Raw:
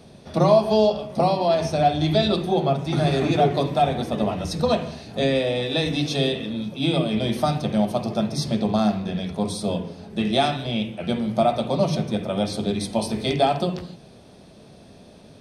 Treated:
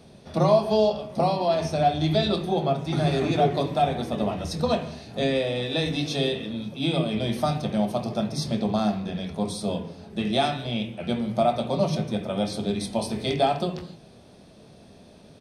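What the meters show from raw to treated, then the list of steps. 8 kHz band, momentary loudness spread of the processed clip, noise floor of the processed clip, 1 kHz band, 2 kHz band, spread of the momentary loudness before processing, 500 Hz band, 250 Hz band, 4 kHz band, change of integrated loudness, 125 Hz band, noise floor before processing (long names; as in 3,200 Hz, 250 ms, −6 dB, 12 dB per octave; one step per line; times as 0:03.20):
−2.5 dB, 7 LU, −50 dBFS, −2.5 dB, −2.5 dB, 7 LU, −3.0 dB, −3.0 dB, −2.5 dB, −3.0 dB, −2.5 dB, −48 dBFS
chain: double-tracking delay 25 ms −12 dB
level −3 dB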